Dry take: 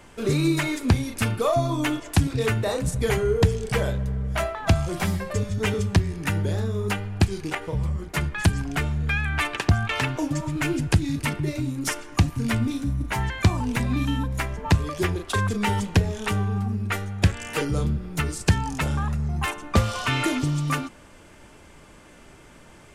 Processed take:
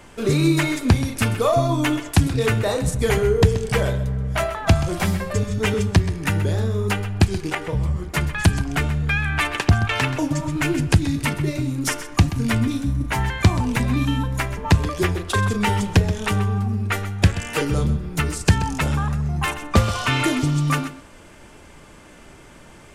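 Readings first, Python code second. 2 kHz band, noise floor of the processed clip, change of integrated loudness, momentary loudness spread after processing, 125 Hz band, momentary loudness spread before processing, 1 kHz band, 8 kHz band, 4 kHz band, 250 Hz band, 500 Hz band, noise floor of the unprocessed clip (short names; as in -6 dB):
+3.5 dB, -45 dBFS, +3.5 dB, 5 LU, +4.0 dB, 5 LU, +3.5 dB, +3.5 dB, +3.5 dB, +3.5 dB, +3.5 dB, -49 dBFS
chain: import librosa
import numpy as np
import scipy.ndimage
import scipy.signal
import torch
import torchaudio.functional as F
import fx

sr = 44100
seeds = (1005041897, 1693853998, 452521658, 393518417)

y = x + 10.0 ** (-13.5 / 20.0) * np.pad(x, (int(129 * sr / 1000.0), 0))[:len(x)]
y = y * librosa.db_to_amplitude(3.5)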